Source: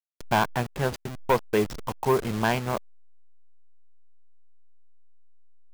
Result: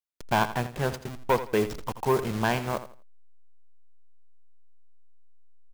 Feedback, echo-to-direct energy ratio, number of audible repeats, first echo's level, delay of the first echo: 26%, -12.5 dB, 2, -13.0 dB, 83 ms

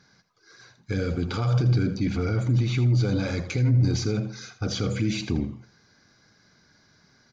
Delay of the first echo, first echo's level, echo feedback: 81 ms, -13.0 dB, 21%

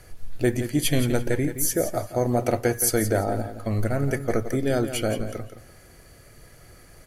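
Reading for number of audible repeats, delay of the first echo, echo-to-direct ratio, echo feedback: 2, 0.171 s, -10.5 dB, 23%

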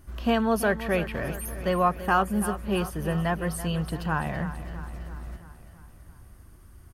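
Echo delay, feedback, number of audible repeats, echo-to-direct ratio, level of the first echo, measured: 0.333 s, 58%, 5, -11.0 dB, -13.0 dB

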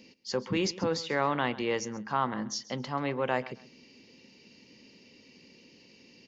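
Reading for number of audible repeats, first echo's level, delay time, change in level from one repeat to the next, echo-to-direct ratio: 2, -18.0 dB, 0.133 s, -12.5 dB, -18.0 dB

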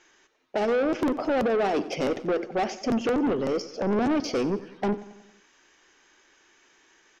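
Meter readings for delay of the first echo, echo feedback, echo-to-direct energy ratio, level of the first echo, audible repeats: 92 ms, 56%, -15.0 dB, -16.5 dB, 4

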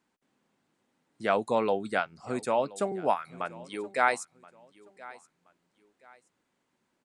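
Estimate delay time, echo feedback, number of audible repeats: 1.025 s, 30%, 2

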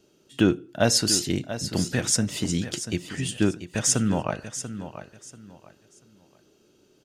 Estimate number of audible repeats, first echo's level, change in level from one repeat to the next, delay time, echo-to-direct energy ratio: 3, -11.5 dB, -11.5 dB, 0.688 s, -11.0 dB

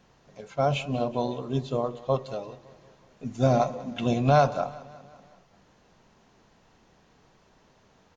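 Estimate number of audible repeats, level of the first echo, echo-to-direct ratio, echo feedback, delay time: 4, -19.0 dB, -17.5 dB, 57%, 0.187 s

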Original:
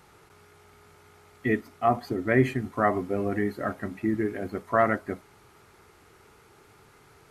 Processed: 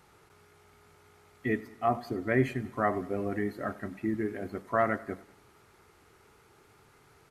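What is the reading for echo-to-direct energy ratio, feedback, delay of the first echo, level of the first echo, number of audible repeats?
-18.5 dB, 55%, 96 ms, -20.0 dB, 3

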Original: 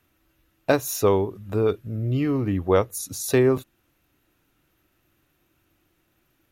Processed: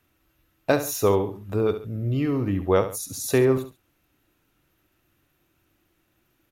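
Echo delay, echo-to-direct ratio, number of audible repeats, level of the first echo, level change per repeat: 69 ms, -10.5 dB, 2, -11.0 dB, -8.5 dB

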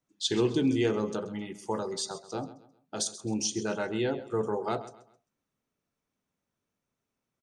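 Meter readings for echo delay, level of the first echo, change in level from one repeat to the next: 0.132 s, -15.5 dB, -9.5 dB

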